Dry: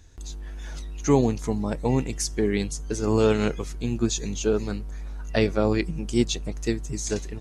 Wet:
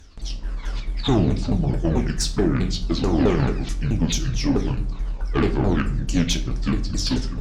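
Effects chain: repeated pitch sweeps -10.5 st, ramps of 0.217 s; in parallel at +1 dB: limiter -16.5 dBFS, peak gain reduction 8 dB; on the sum: tube stage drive 12 dB, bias 0.3; reverb RT60 0.55 s, pre-delay 7 ms, DRR 6 dB

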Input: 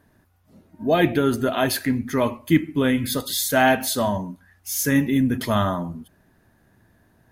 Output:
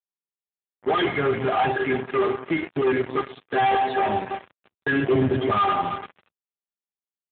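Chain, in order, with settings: loudest bins only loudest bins 64; LPF 2200 Hz 12 dB/oct; metallic resonator 390 Hz, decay 0.26 s, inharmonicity 0.008; feedback echo 0.331 s, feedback 41%, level -17.5 dB; shoebox room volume 1800 m³, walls mixed, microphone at 0.51 m; in parallel at -9 dB: overloaded stage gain 28 dB; on the sum: notches 60/120/180/240/300/360/420/480/540 Hz; 1.07–1.76 comb 1.4 ms, depth 94%; 2.31–2.87 compressor 3:1, threshold -41 dBFS, peak gain reduction 8 dB; fuzz box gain 43 dB, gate -50 dBFS; 5.03–5.51 fifteen-band EQ 100 Hz +12 dB, 630 Hz +7 dB, 1600 Hz -3 dB; gain -4.5 dB; AMR-NB 7.95 kbps 8000 Hz

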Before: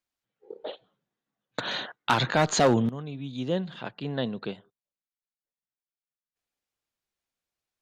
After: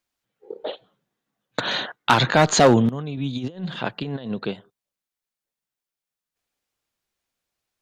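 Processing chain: 3.17–4.35 negative-ratio compressor -34 dBFS, ratio -0.5; gain +6.5 dB

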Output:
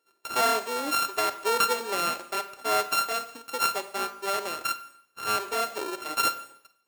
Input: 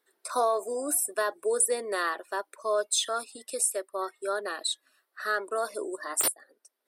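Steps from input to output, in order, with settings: sample sorter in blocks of 32 samples; Schroeder reverb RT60 0.69 s, combs from 32 ms, DRR 11 dB; gain +1 dB

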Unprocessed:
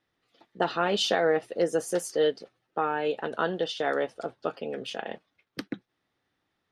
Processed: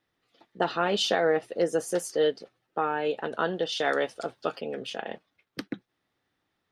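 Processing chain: 3.72–4.61 high shelf 2200 Hz +9.5 dB

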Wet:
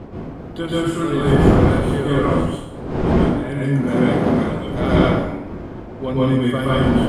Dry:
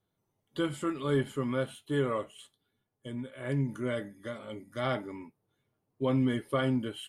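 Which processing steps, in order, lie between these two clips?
1.29–1.95 half-wave gain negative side -3 dB; wind noise 390 Hz -32 dBFS; 3.07–4.35 HPF 110 Hz; plate-style reverb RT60 0.88 s, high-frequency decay 0.8×, pre-delay 0.11 s, DRR -7 dB; gain +4 dB

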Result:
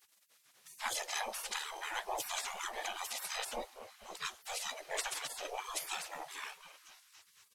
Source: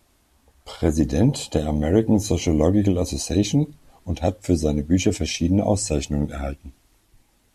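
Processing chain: delay with a stepping band-pass 0.233 s, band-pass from 160 Hz, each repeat 0.7 oct, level -9.5 dB; harmoniser -12 st -2 dB, +4 st -9 dB; spectral gate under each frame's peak -25 dB weak

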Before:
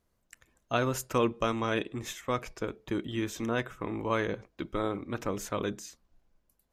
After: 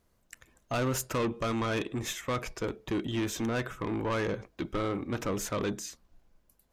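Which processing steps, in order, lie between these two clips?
in parallel at -2 dB: limiter -21 dBFS, peak gain reduction 7 dB; on the sum: soft clip -25.5 dBFS, distortion -9 dB

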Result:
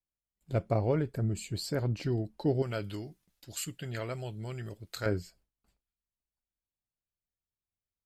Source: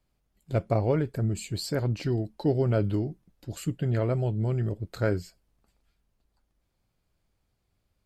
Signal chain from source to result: gate with hold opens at -55 dBFS; 2.62–5.06 tilt shelf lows -9.5 dB, about 1200 Hz; gain -3.5 dB

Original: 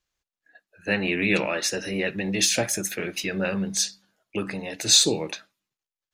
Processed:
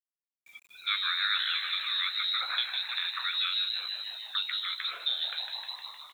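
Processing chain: in parallel at -6 dB: one-sided clip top -16 dBFS; on the sum: frequency-shifting echo 0.154 s, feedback 61%, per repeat -110 Hz, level -8.5 dB; inverted band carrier 4000 Hz; compressor 2:1, threshold -34 dBFS, peak gain reduction 11 dB; HPF 1000 Hz 24 dB/oct; bit-crush 10-bit

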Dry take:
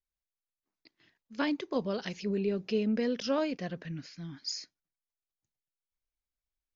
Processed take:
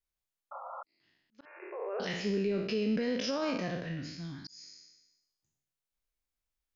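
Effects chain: spectral trails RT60 0.85 s; limiter -23.5 dBFS, peak gain reduction 8 dB; auto swell 0.684 s; 0.51–0.83 painted sound noise 510–1400 Hz -43 dBFS; 1.45–2 brick-wall FIR band-pass 340–2800 Hz

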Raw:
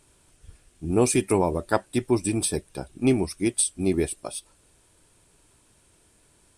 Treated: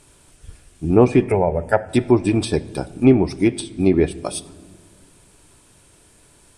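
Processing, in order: treble ducked by the level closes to 1700 Hz, closed at -17.5 dBFS; 1.24–1.89 fixed phaser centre 1100 Hz, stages 6; shoebox room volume 1900 m³, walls mixed, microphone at 0.3 m; gain +8 dB

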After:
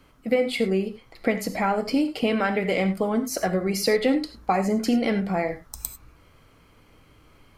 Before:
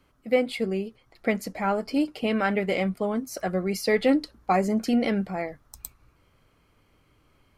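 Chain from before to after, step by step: compressor 3:1, threshold -29 dBFS, peak gain reduction 10 dB; non-linear reverb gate 0.12 s flat, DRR 8.5 dB; gain +7.5 dB

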